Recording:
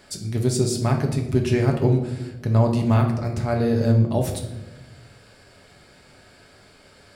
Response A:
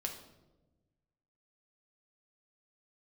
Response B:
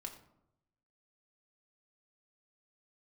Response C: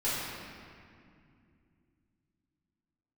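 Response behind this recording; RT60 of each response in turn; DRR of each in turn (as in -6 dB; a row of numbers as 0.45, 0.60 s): A; 1.1, 0.80, 2.4 s; 2.0, 1.5, -11.5 dB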